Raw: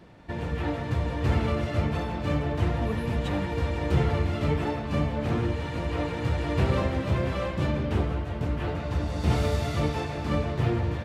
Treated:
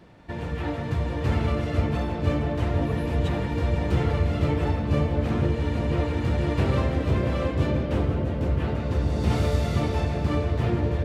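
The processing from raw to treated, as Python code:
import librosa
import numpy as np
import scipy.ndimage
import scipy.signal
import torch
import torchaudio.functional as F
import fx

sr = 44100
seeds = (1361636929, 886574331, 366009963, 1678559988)

y = fx.echo_bbd(x, sr, ms=487, stages=2048, feedback_pct=79, wet_db=-4)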